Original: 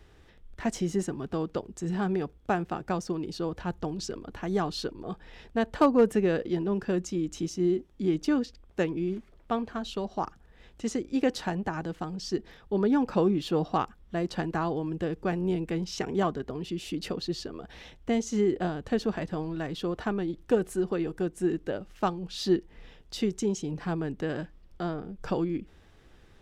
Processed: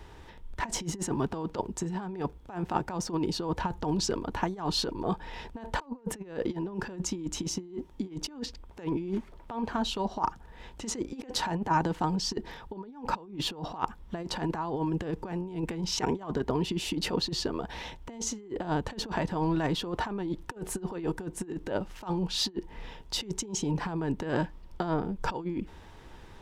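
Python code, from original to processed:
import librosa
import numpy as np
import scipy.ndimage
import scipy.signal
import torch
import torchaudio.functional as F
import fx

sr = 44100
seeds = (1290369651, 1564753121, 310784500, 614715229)

y = fx.over_compress(x, sr, threshold_db=-33.0, ratio=-0.5)
y = fx.peak_eq(y, sr, hz=930.0, db=13.0, octaves=0.23)
y = y * 10.0 ** (1.5 / 20.0)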